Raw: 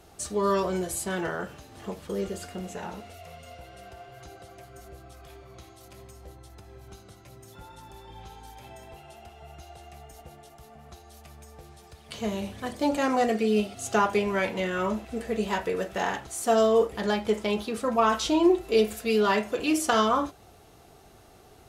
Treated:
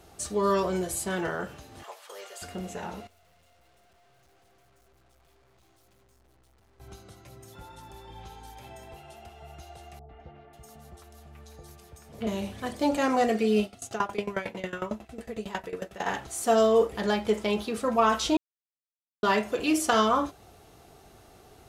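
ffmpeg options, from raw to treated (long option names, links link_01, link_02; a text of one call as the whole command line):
ffmpeg -i in.wav -filter_complex "[0:a]asettb=1/sr,asplit=3[link_01][link_02][link_03];[link_01]atrim=end=1.834[link_04];[link_02]atrim=start=1.83:end=2.42,asetpts=PTS-STARTPTS,afade=type=in:duration=0.004:curve=qsin,afade=type=out:start_time=0.586:duration=0.004:curve=qsin,highpass=frequency=670:width=0.5412,highpass=frequency=670:width=1.3066[link_05];[link_03]atrim=start=2.416[link_06];[link_04][link_05]acrossfade=duration=0.004:curve1=hsin:curve2=qsin[link_07];[link_07][link_06]acrossfade=duration=0.004:curve1=qsin:curve2=hsin,asettb=1/sr,asplit=3[link_08][link_09][link_10];[link_08]atrim=end=3.074[link_11];[link_09]atrim=start=3.07:end=6.8,asetpts=PTS-STARTPTS,afade=type=in:duration=0.004:curve=qsin,afade=type=out:start_time=3.726:duration=0.004:curve=qsin,aeval=exprs='(tanh(1410*val(0)+0.7)-tanh(0.7))/1410':channel_layout=same[link_12];[link_10]atrim=start=6.796[link_13];[link_11][link_12]acrossfade=duration=0.004:curve1=hsin:curve2=qsin[link_14];[link_14][link_13]acrossfade=duration=0.004:curve1=qsin:curve2=hsin,asettb=1/sr,asplit=3[link_15][link_16][link_17];[link_15]atrim=end=9.994[link_18];[link_16]atrim=start=9.99:end=12.27,asetpts=PTS-STARTPTS,afade=type=in:duration=0.004:curve=qsin,afade=type=out:start_time=2.276:duration=0.004:curve=qsin,acrossover=split=800|2900[link_19][link_20][link_21];[link_20]adelay=100[link_22];[link_21]adelay=540[link_23];[link_19][link_22][link_23]amix=inputs=3:normalize=0,atrim=end_sample=100548[link_24];[link_17]atrim=start=12.266[link_25];[link_18][link_24]acrossfade=duration=0.004:curve1=hsin:curve2=qsin[link_26];[link_26][link_25]acrossfade=duration=0.004:curve1=qsin:curve2=hsin,asplit=3[link_27][link_28][link_29];[link_27]afade=type=out:start_time=13.64:duration=0.02[link_30];[link_28]aeval=exprs='val(0)*pow(10,-19*if(lt(mod(11*n/s,1),2*abs(11)/1000),1-mod(11*n/s,1)/(2*abs(11)/1000),(mod(11*n/s,1)-2*abs(11)/1000)/(1-2*abs(11)/1000))/20)':channel_layout=same,afade=type=in:start_time=13.64:duration=0.02,afade=type=out:start_time=16.05:duration=0.02[link_31];[link_29]afade=type=in:start_time=16.05:duration=0.02[link_32];[link_30][link_31][link_32]amix=inputs=3:normalize=0,asplit=3[link_33][link_34][link_35];[link_33]atrim=end=18.37,asetpts=PTS-STARTPTS,afade=type=out:start_time=18.366:duration=0.004:curve=hsin[link_36];[link_34]atrim=start=18.37:end=19.23,asetpts=PTS-STARTPTS,volume=0[link_37];[link_35]atrim=start=19.23,asetpts=PTS-STARTPTS,afade=type=in:duration=0.004:curve=hsin[link_38];[link_36][link_37][link_38]concat=n=3:v=0:a=1" out.wav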